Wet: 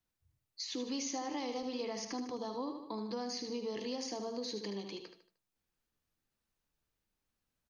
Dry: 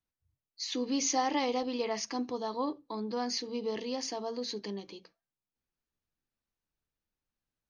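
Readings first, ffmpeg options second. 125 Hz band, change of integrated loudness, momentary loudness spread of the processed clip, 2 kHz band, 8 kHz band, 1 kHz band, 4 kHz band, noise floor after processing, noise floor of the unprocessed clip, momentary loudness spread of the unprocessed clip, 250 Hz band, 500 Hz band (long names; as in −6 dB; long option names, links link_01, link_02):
can't be measured, −6.0 dB, 6 LU, −7.5 dB, −7.5 dB, −8.5 dB, −5.0 dB, below −85 dBFS, below −85 dBFS, 10 LU, −4.5 dB, −5.0 dB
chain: -filter_complex "[0:a]aecho=1:1:76|152|228|304:0.376|0.147|0.0572|0.0223,acrossover=split=420|6100[link_01][link_02][link_03];[link_01]acompressor=threshold=-45dB:ratio=4[link_04];[link_02]acompressor=threshold=-47dB:ratio=4[link_05];[link_03]acompressor=threshold=-55dB:ratio=4[link_06];[link_04][link_05][link_06]amix=inputs=3:normalize=0,volume=3.5dB"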